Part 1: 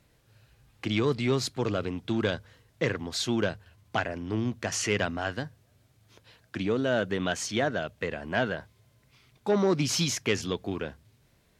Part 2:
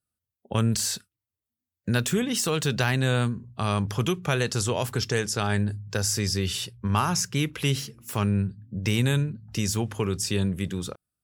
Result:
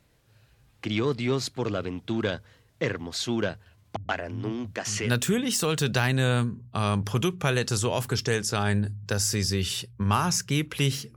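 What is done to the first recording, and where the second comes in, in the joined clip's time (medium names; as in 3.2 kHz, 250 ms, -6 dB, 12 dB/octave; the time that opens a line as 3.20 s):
part 1
3.96–5.12 s: bands offset in time lows, highs 130 ms, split 180 Hz
5.06 s: go over to part 2 from 1.90 s, crossfade 0.12 s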